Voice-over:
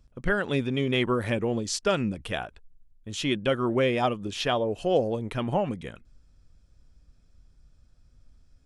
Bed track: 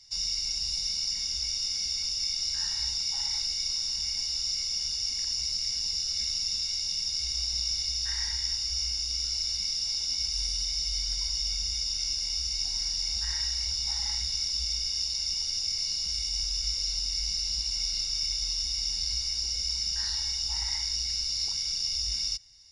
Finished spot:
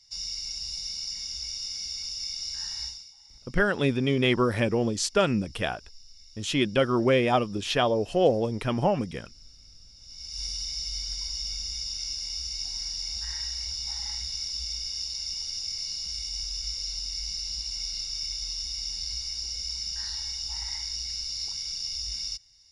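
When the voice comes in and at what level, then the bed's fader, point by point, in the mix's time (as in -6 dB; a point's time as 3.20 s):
3.30 s, +2.0 dB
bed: 2.85 s -4 dB
3.15 s -23.5 dB
9.94 s -23.5 dB
10.43 s -3 dB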